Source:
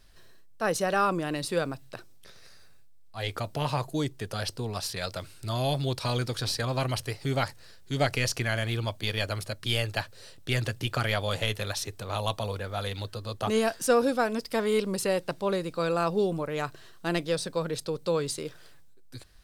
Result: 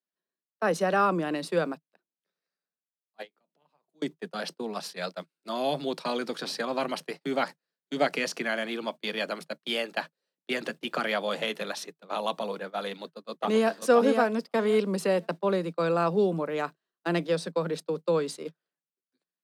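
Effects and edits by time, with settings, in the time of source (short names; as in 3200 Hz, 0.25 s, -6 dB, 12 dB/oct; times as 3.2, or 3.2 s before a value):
3.22–4.02 compressor, threshold -36 dBFS
12.89–13.74 echo throw 0.53 s, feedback 20%, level -4.5 dB
whole clip: gate -34 dBFS, range -33 dB; steep high-pass 160 Hz 96 dB/oct; high shelf 4100 Hz -11 dB; gain +2 dB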